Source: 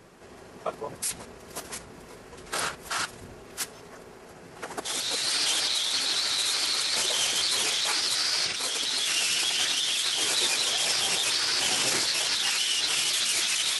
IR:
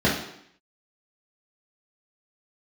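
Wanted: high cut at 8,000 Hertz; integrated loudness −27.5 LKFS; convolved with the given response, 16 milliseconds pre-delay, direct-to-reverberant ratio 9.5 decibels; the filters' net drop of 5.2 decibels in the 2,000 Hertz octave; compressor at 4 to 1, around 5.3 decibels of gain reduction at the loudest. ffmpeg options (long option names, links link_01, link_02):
-filter_complex "[0:a]lowpass=8000,equalizer=frequency=2000:width_type=o:gain=-7,acompressor=threshold=-31dB:ratio=4,asplit=2[link_01][link_02];[1:a]atrim=start_sample=2205,adelay=16[link_03];[link_02][link_03]afir=irnorm=-1:irlink=0,volume=-27dB[link_04];[link_01][link_04]amix=inputs=2:normalize=0,volume=4dB"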